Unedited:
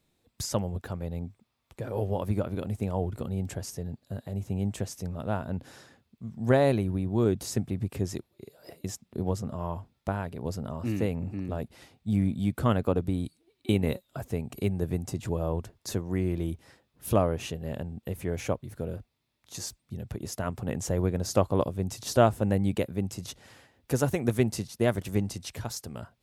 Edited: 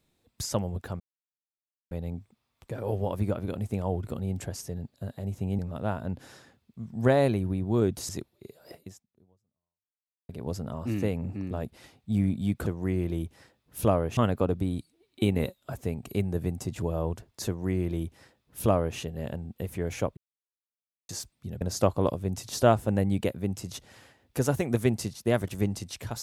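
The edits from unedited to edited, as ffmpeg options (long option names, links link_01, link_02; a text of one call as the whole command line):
ffmpeg -i in.wav -filter_complex "[0:a]asplit=10[link_01][link_02][link_03][link_04][link_05][link_06][link_07][link_08][link_09][link_10];[link_01]atrim=end=1,asetpts=PTS-STARTPTS,afade=type=out:start_time=0.996:duration=0.004:curve=hsin,apad=pad_dur=0.91[link_11];[link_02]atrim=start=1:end=4.682,asetpts=PTS-STARTPTS,afade=type=in:duration=0.004:curve=hsin[link_12];[link_03]atrim=start=5.028:end=7.532[link_13];[link_04]atrim=start=8.068:end=10.27,asetpts=PTS-STARTPTS,afade=type=out:start_time=0.642:duration=1.56:curve=exp[link_14];[link_05]atrim=start=10.27:end=12.642,asetpts=PTS-STARTPTS,afade=type=in:duration=0.004:curve=hsin[link_15];[link_06]atrim=start=15.938:end=17.452[link_16];[link_07]atrim=start=12.638:end=18.64,asetpts=PTS-STARTPTS,afade=type=out:start_time=5.998:duration=0.004:curve=hsin[link_17];[link_08]atrim=start=18.64:end=19.56,asetpts=PTS-STARTPTS,volume=0[link_18];[link_09]atrim=start=19.56:end=20.082,asetpts=PTS-STARTPTS,afade=type=in:duration=0.004:curve=hsin[link_19];[link_10]atrim=start=21.148[link_20];[link_11][link_12]concat=n=2:v=0:a=1[link_21];[link_21][link_13]acrossfade=duration=0.004:curve1=hsin:curve2=hsin[link_22];[link_14][link_15]concat=n=2:v=0:a=1[link_23];[link_22][link_23]acrossfade=duration=0.004:curve1=hsin:curve2=hsin[link_24];[link_24][link_16]acrossfade=duration=0.004:curve1=hsin:curve2=hsin[link_25];[link_17][link_18][link_19]concat=n=3:v=0:a=1[link_26];[link_25][link_26]acrossfade=duration=0.004:curve1=hsin:curve2=hsin[link_27];[link_27][link_20]acrossfade=duration=0.004:curve1=hsin:curve2=hsin" out.wav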